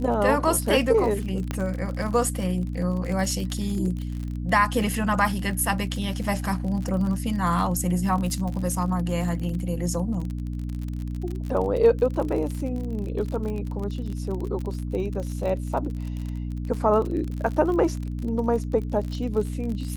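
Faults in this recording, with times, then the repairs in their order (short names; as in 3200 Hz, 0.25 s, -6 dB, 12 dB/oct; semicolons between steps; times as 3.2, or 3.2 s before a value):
crackle 43/s -30 dBFS
hum 60 Hz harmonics 5 -30 dBFS
1.51 pop -14 dBFS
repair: de-click; de-hum 60 Hz, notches 5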